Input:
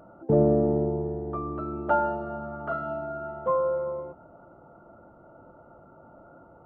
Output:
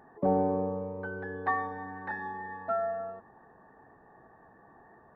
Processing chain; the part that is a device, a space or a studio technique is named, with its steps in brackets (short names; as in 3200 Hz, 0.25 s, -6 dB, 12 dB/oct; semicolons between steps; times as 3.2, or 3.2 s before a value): nightcore (varispeed +29%); gain -5.5 dB